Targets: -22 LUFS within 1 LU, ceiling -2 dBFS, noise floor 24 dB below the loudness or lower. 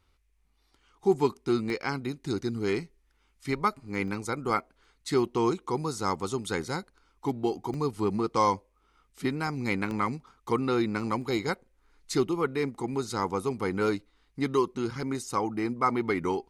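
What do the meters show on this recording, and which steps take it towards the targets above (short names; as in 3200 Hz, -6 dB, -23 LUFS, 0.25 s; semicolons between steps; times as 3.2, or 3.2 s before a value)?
dropouts 5; longest dropout 1.2 ms; loudness -30.0 LUFS; peak -11.0 dBFS; loudness target -22.0 LUFS
-> interpolate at 1.7/4.08/7.74/9.91/11.22, 1.2 ms; gain +8 dB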